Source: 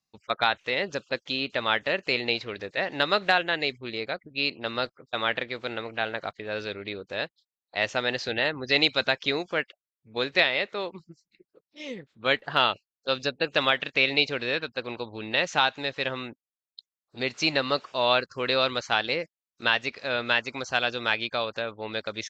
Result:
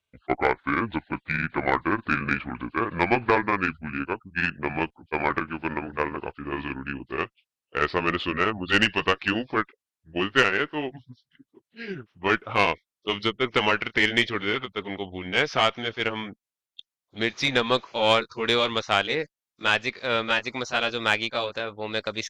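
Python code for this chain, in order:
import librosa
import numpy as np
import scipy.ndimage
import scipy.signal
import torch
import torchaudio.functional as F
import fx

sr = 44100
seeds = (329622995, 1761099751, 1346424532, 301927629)

y = fx.pitch_glide(x, sr, semitones=-10.0, runs='ending unshifted')
y = fx.tube_stage(y, sr, drive_db=13.0, bias=0.45)
y = F.gain(torch.from_numpy(y), 5.0).numpy()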